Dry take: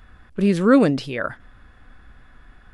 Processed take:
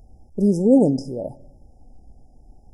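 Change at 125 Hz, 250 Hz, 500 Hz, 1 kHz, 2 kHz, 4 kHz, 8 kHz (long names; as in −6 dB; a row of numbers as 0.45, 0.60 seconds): 0.0 dB, +0.5 dB, 0.0 dB, −9.0 dB, below −40 dB, −10.5 dB, can't be measured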